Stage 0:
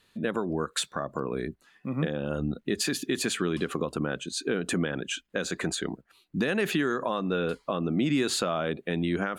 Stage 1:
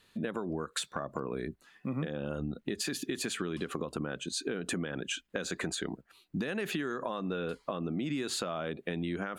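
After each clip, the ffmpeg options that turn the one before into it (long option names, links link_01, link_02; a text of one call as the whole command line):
ffmpeg -i in.wav -af "acompressor=threshold=-31dB:ratio=6" out.wav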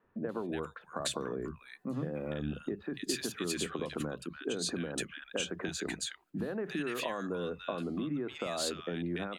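ffmpeg -i in.wav -filter_complex "[0:a]acrossover=split=160|1500[link_01][link_02][link_03];[link_01]adelay=40[link_04];[link_03]adelay=290[link_05];[link_04][link_02][link_05]amix=inputs=3:normalize=0" out.wav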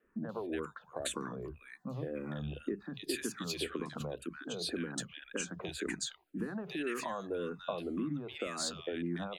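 ffmpeg -i in.wav -filter_complex "[0:a]asplit=2[link_01][link_02];[link_02]afreqshift=-1.9[link_03];[link_01][link_03]amix=inputs=2:normalize=1,volume=1dB" out.wav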